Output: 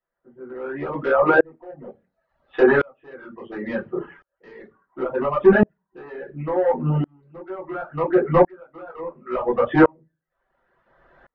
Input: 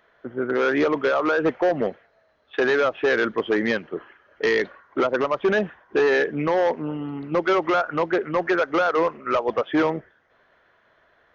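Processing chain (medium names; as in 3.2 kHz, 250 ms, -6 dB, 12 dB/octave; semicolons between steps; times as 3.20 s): treble shelf 2.1 kHz -12 dB; reverberation RT60 0.25 s, pre-delay 3 ms, DRR -6.5 dB; in parallel at -4 dB: saturation -11 dBFS, distortion -11 dB; on the sum: low-pass that closes with the level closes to 2 kHz, closed at -6 dBFS; reverb removal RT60 0.56 s; sawtooth tremolo in dB swelling 0.71 Hz, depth 37 dB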